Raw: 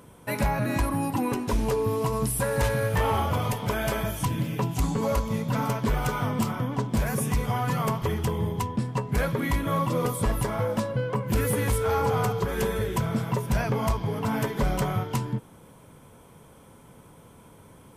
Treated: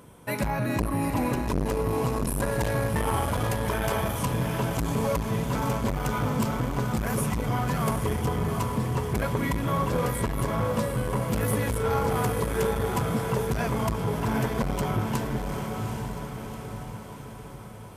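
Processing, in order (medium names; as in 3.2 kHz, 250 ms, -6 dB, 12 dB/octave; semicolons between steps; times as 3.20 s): 0.68–1.66 s: bass shelf 71 Hz +10 dB; echo that smears into a reverb 797 ms, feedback 53%, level -5 dB; transformer saturation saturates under 400 Hz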